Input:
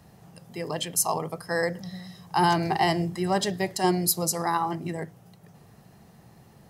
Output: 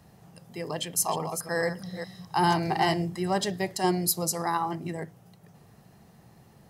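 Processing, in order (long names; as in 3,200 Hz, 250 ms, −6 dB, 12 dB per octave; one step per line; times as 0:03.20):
0:00.77–0:02.94: delay that plays each chunk backwards 212 ms, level −8 dB
level −2 dB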